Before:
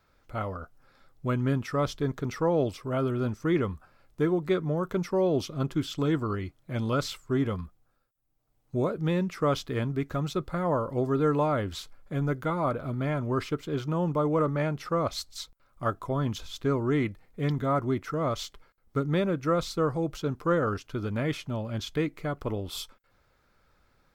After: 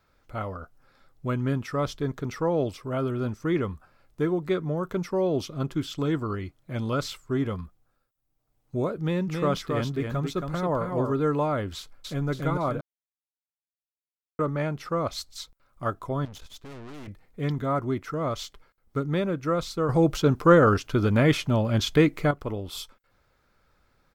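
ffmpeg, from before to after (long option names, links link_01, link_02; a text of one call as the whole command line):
ffmpeg -i in.wav -filter_complex "[0:a]asettb=1/sr,asplit=3[link_01][link_02][link_03];[link_01]atrim=end=9.004[link_04];[link_02]atrim=start=9:end=11.13,asetpts=PTS-STARTPTS,afade=type=in:duration=0.004:curve=qsin,afade=type=out:start_time=2.126:duration=0.004:curve=qsin,aecho=1:1:272:0.596,atrim=end_sample=93933[link_05];[link_03]atrim=start=11.126[link_06];[link_04][link_05]acrossfade=duration=0.004:curve1=hsin:curve2=qsin[link_07];[link_07][link_06]acrossfade=duration=0.004:curve1=qsin:curve2=hsin,asplit=2[link_08][link_09];[link_09]afade=type=in:start_time=11.76:duration=0.01,afade=type=out:start_time=12.29:duration=0.01,aecho=0:1:280|560|840|1120|1400|1680:0.891251|0.401063|0.180478|0.0812152|0.0365469|0.0164461[link_10];[link_08][link_10]amix=inputs=2:normalize=0,asettb=1/sr,asplit=3[link_11][link_12][link_13];[link_11]atrim=end=16.254[link_14];[link_12]atrim=start=16.25:end=17.08,asetpts=PTS-STARTPTS,afade=type=in:duration=0.004:curve=qsin,afade=type=out:start_time=0.826:duration=0.004:curve=qsin,aeval=exprs='(tanh(112*val(0)+0.7)-tanh(0.7))/112':channel_layout=same[link_15];[link_13]atrim=start=17.076[link_16];[link_14][link_15]acrossfade=duration=0.004:curve1=hsin:curve2=qsin[link_17];[link_17][link_16]acrossfade=duration=0.004:curve1=qsin:curve2=hsin,asplit=5[link_18][link_19][link_20][link_21][link_22];[link_18]atrim=end=12.81,asetpts=PTS-STARTPTS,afade=type=out:start_time=12.806:duration=0.004:curve=hsin[link_23];[link_19]atrim=start=12.81:end=14.39,asetpts=PTS-STARTPTS,volume=0[link_24];[link_20]atrim=start=14.39:end=19.892,asetpts=PTS-STARTPTS,afade=type=in:duration=0.004:curve=hsin[link_25];[link_21]atrim=start=19.888:end=22.312,asetpts=PTS-STARTPTS,volume=9dB[link_26];[link_22]atrim=start=22.308[link_27];[link_23][link_24][link_25]concat=n=3:v=0:a=1[link_28];[link_28][link_26]acrossfade=duration=0.004:curve1=hsin:curve2=hsin[link_29];[link_29][link_27]acrossfade=duration=0.004:curve1=hsin:curve2=hsin" out.wav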